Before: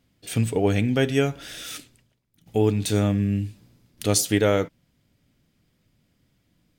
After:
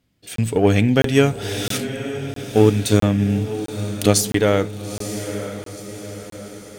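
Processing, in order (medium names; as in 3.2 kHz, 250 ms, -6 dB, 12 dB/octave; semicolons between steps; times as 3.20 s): 2.56–4.15 s: transient shaper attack +6 dB, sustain -3 dB; level rider gain up to 15.5 dB; echo that smears into a reverb 929 ms, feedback 51%, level -10.5 dB; Chebyshev shaper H 7 -42 dB, 8 -33 dB, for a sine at 0 dBFS; crackling interface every 0.66 s, samples 1024, zero, from 0.36 s; trim -1 dB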